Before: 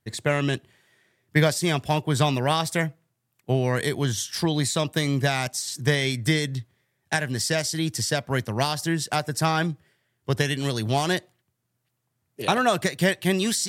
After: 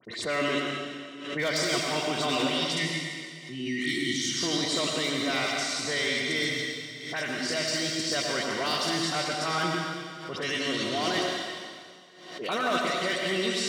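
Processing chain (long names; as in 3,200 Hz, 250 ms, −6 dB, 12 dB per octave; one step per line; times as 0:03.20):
time-frequency box erased 0:02.48–0:04.17, 380–1,800 Hz
Chebyshev band-pass filter 230–5,000 Hz, order 2
noise gate −51 dBFS, range −16 dB
low-shelf EQ 440 Hz −11 dB
speech leveller 0.5 s
transient designer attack −5 dB, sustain +7 dB
all-pass dispersion highs, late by 52 ms, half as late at 2,600 Hz
wave folding −20.5 dBFS
notch comb filter 840 Hz
convolution reverb RT60 2.0 s, pre-delay 78 ms, DRR −1 dB
background raised ahead of every attack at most 65 dB per second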